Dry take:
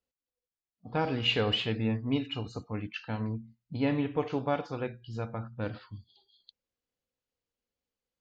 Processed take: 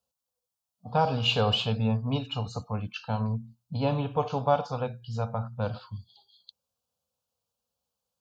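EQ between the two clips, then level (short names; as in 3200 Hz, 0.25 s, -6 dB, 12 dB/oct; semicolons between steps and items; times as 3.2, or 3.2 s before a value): HPF 83 Hz; fixed phaser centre 810 Hz, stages 4; +8.5 dB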